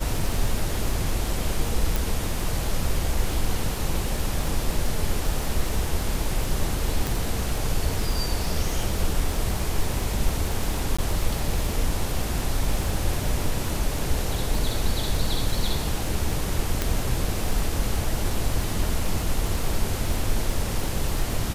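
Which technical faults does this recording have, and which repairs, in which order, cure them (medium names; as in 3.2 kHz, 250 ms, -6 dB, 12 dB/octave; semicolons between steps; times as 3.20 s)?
crackle 44 per s -28 dBFS
1.96 s: pop
7.07 s: pop
10.97–10.98 s: dropout 15 ms
16.82 s: pop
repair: de-click; interpolate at 10.97 s, 15 ms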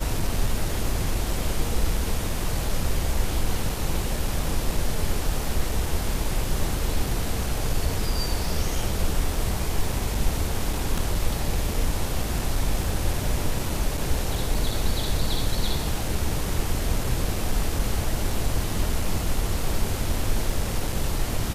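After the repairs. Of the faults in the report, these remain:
1.96 s: pop
7.07 s: pop
16.82 s: pop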